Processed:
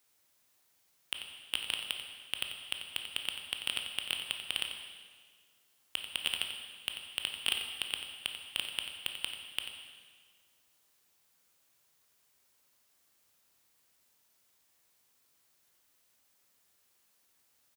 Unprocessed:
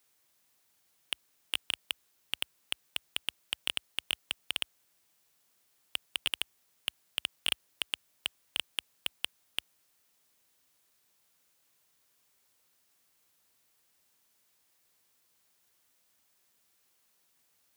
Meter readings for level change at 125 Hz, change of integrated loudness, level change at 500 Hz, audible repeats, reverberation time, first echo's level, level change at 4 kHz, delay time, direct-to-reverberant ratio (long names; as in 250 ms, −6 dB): +0.5 dB, 0.0 dB, +0.5 dB, 1, 1.7 s, −10.0 dB, +0.5 dB, 90 ms, 3.0 dB